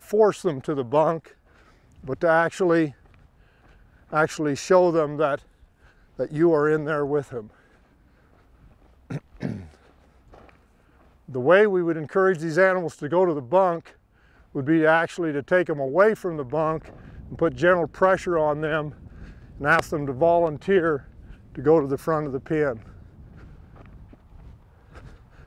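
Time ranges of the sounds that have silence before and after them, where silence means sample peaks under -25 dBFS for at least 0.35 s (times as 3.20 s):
2.09–2.88 s
4.13–5.35 s
6.20–7.39 s
9.11–9.52 s
11.35–13.77 s
14.56–16.77 s
17.32–18.88 s
19.61–20.97 s
21.58–22.73 s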